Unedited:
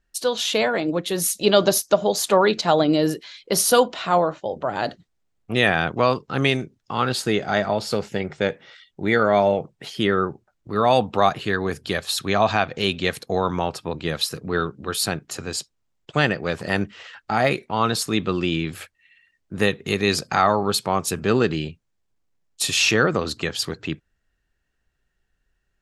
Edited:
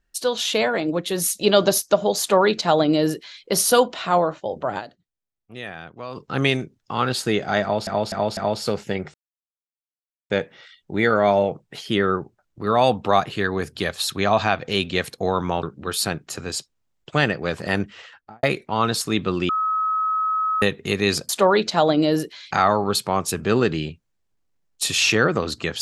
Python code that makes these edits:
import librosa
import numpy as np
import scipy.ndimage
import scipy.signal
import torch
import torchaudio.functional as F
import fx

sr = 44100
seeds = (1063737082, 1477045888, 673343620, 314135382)

y = fx.studio_fade_out(x, sr, start_s=16.98, length_s=0.46)
y = fx.edit(y, sr, fx.duplicate(start_s=2.2, length_s=1.22, to_s=20.3),
    fx.fade_down_up(start_s=4.78, length_s=1.4, db=-16.0, fade_s=0.24, curve='exp'),
    fx.repeat(start_s=7.62, length_s=0.25, count=4),
    fx.insert_silence(at_s=8.39, length_s=1.16),
    fx.cut(start_s=13.72, length_s=0.92),
    fx.bleep(start_s=18.5, length_s=1.13, hz=1280.0, db=-19.0), tone=tone)